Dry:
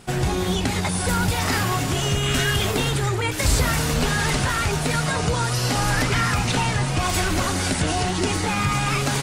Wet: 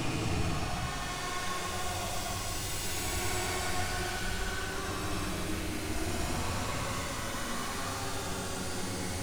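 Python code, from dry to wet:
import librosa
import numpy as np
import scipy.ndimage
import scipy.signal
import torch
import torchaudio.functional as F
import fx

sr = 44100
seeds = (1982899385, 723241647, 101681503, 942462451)

y = np.maximum(x, 0.0)
y = fx.paulstretch(y, sr, seeds[0], factor=15.0, window_s=0.1, from_s=6.96)
y = y * librosa.db_to_amplitude(-8.0)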